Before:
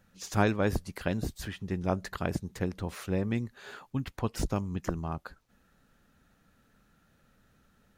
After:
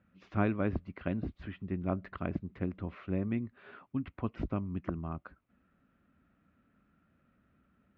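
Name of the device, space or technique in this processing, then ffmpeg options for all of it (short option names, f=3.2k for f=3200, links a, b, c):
bass cabinet: -af "highpass=61,equalizer=f=130:t=q:w=4:g=-5,equalizer=f=270:t=q:w=4:g=3,equalizer=f=470:t=q:w=4:g=-7,equalizer=f=850:t=q:w=4:g=-9,equalizer=f=1.7k:t=q:w=4:g=-7,lowpass=f=2.4k:w=0.5412,lowpass=f=2.4k:w=1.3066,volume=-2dB"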